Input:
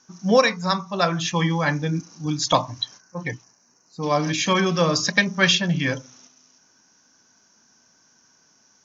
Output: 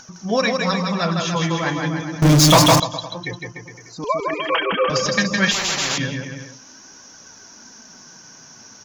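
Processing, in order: 4.04–4.90 s: formants replaced by sine waves; bass shelf 190 Hz +3.5 dB; in parallel at -2 dB: upward compressor, threshold -21 dBFS; on the sum: flange 0.28 Hz, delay 1.3 ms, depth 8.6 ms, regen +23%; on a send: bouncing-ball echo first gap 160 ms, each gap 0.85×, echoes 5; 2.22–2.80 s: on the sum: power-law waveshaper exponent 0.35; 5.51–5.98 s: spectrum-flattening compressor 10:1; trim -2.5 dB

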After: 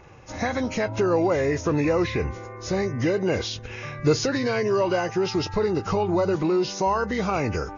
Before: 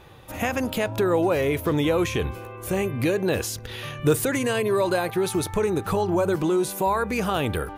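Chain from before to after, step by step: knee-point frequency compression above 1.4 kHz 1.5:1

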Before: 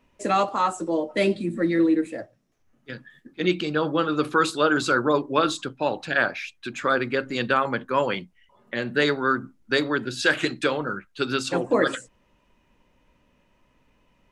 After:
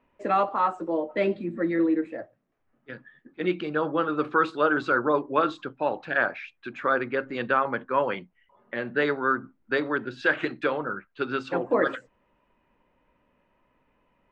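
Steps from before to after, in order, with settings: low-pass 1.9 kHz 12 dB/octave; bass shelf 250 Hz -9 dB

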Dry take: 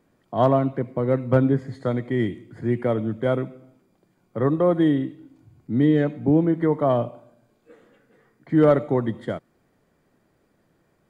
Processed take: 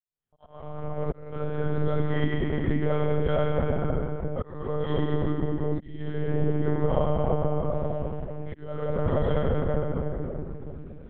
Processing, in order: fade-in on the opening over 2.31 s; treble shelf 2.6 kHz +11 dB; reverberation RT60 3.1 s, pre-delay 4 ms, DRR -12.5 dB; compression 6:1, threshold -11 dBFS, peak gain reduction 11.5 dB; slow attack 625 ms; spectral noise reduction 12 dB; monotone LPC vocoder at 8 kHz 150 Hz; graphic EQ with 31 bands 315 Hz -8 dB, 2 kHz -3 dB, 3.15 kHz +4 dB; trim -8 dB

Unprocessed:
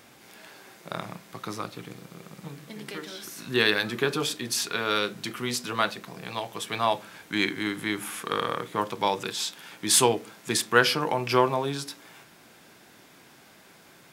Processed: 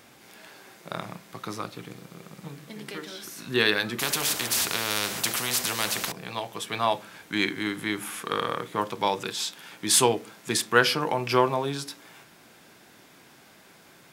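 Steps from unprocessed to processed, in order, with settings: 3.99–6.12 s: spectrum-flattening compressor 4:1

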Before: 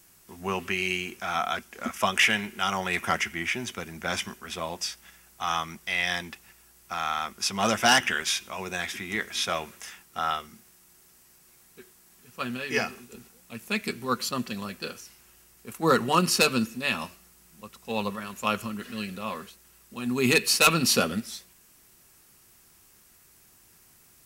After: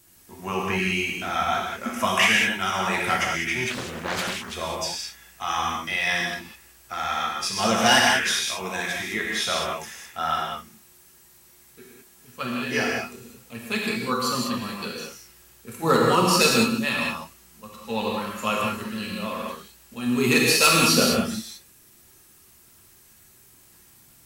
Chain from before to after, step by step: coarse spectral quantiser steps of 15 dB; 0.66–1.55 s: bass shelf 190 Hz +8 dB; 7.20–7.60 s: comb of notches 730 Hz; gated-style reverb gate 230 ms flat, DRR -2.5 dB; 3.70–4.55 s: loudspeaker Doppler distortion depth 0.69 ms

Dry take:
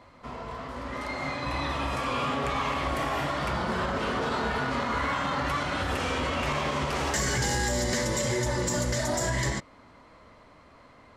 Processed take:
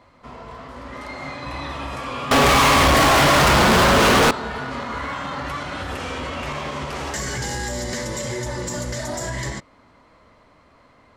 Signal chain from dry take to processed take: 2.31–4.31 s: fuzz box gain 41 dB, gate -51 dBFS

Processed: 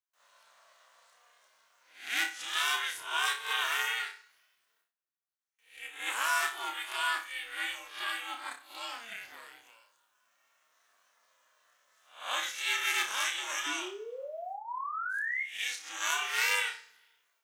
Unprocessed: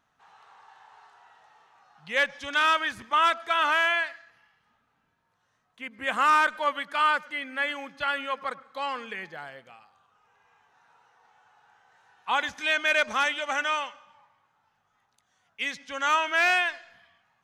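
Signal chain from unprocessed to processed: reverse spectral sustain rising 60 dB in 0.44 s; gate with hold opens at -58 dBFS; ring modulator 230 Hz; painted sound rise, 13.66–15.43 s, 290–2200 Hz -28 dBFS; tilt EQ +4 dB/octave; flange 0.79 Hz, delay 2.8 ms, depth 7.8 ms, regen -78%; treble shelf 6.3 kHz +11.5 dB; on a send: flutter echo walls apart 5.2 m, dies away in 0.31 s; on the sum: trim -6.5 dB

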